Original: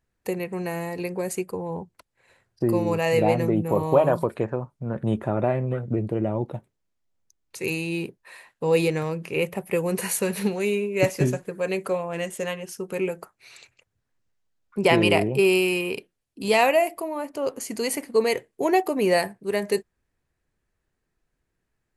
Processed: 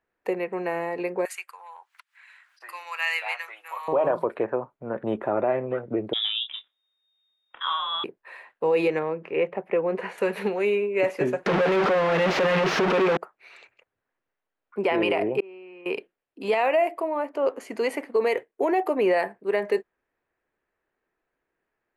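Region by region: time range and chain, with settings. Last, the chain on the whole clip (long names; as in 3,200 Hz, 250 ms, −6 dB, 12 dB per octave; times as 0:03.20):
0:01.25–0:03.88: high-pass filter 1,200 Hz 24 dB per octave + high-shelf EQ 2,600 Hz +10 dB + upward compression, threshold −44 dBFS
0:06.13–0:08.04: double-tracking delay 27 ms −7 dB + voice inversion scrambler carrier 3,700 Hz
0:08.99–0:10.18: head-to-tape spacing loss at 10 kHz 21 dB + highs frequency-modulated by the lows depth 0.1 ms
0:11.46–0:13.17: linear delta modulator 32 kbit/s, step −29.5 dBFS + leveller curve on the samples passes 5 + parametric band 160 Hz +11.5 dB 0.47 octaves
0:15.40–0:15.86: band-pass filter 110–2,200 Hz + gate with flip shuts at −30 dBFS, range −38 dB + envelope flattener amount 70%
0:18.16–0:18.96: noise gate −45 dBFS, range −7 dB + high-shelf EQ 9,800 Hz +9.5 dB
whole clip: three-way crossover with the lows and the highs turned down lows −19 dB, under 300 Hz, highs −21 dB, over 2,800 Hz; brickwall limiter −18 dBFS; level +4 dB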